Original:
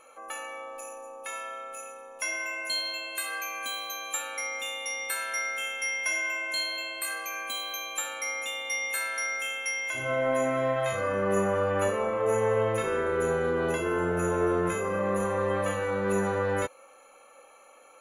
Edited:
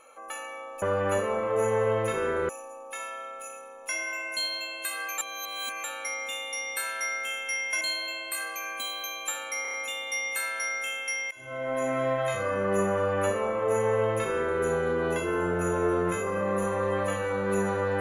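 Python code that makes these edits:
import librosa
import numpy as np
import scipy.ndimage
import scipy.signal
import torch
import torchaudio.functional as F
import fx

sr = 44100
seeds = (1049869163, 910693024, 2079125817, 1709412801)

y = fx.edit(x, sr, fx.reverse_span(start_s=3.51, length_s=0.66),
    fx.cut(start_s=6.14, length_s=0.37),
    fx.stutter(start_s=8.32, slice_s=0.03, count=5),
    fx.fade_in_from(start_s=9.89, length_s=0.68, floor_db=-20.0),
    fx.duplicate(start_s=11.52, length_s=1.67, to_s=0.82), tone=tone)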